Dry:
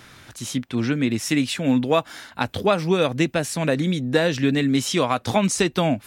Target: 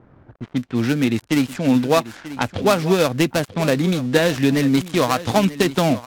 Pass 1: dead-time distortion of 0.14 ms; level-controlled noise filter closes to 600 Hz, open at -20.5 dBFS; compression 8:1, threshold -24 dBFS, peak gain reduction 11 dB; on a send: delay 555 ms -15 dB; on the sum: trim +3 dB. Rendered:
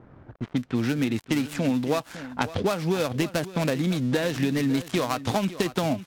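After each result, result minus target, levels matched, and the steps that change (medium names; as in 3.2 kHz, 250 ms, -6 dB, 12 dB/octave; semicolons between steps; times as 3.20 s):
compression: peak gain reduction +11 dB; echo 383 ms early
remove: compression 8:1, threshold -24 dBFS, peak gain reduction 11 dB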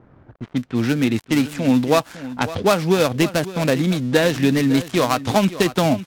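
echo 383 ms early
change: delay 938 ms -15 dB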